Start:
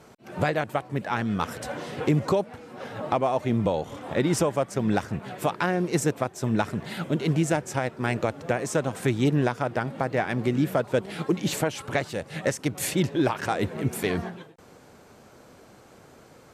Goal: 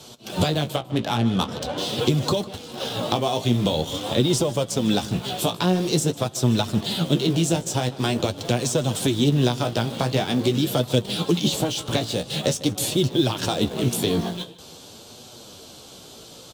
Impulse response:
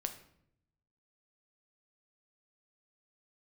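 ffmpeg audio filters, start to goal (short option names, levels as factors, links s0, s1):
-filter_complex "[0:a]highshelf=f=2600:t=q:w=3:g=9.5,acrossover=split=290|1200[s0][s1][s2];[s0]acompressor=threshold=0.0447:ratio=4[s3];[s1]acompressor=threshold=0.0251:ratio=4[s4];[s2]acompressor=threshold=0.0178:ratio=4[s5];[s3][s4][s5]amix=inputs=3:normalize=0,asplit=2[s6][s7];[s7]acrusher=bits=5:mix=0:aa=0.000001,volume=0.299[s8];[s6][s8]amix=inputs=2:normalize=0,flanger=delay=8:depth=9.8:regen=30:speed=0.46:shape=sinusoidal,asettb=1/sr,asplit=3[s9][s10][s11];[s9]atrim=end=0.764[s12];[s10]atrim=start=0.76:end=1.78,asetpts=PTS-STARTPTS,afade=t=in:d=0.004:c=qsin,afade=t=out:st=1.016:d=0.004:c=qsin,adynamicsmooth=sensitivity=8:basefreq=2200[s13];[s11]atrim=start=1.776[s14];[s12][s13]acrossfade=d=0.004:c1=hsin:c2=qsin[s15];[s15][s14]acrossfade=d=0.004:c1=qsin:c2=hsin,asplit=2[s16][s17];[s17]adelay=151.6,volume=0.126,highshelf=f=4000:g=-3.41[s18];[s16][s18]amix=inputs=2:normalize=0,asplit=2[s19][s20];[1:a]atrim=start_sample=2205[s21];[s20][s21]afir=irnorm=-1:irlink=0,volume=0.168[s22];[s19][s22]amix=inputs=2:normalize=0,volume=2.37"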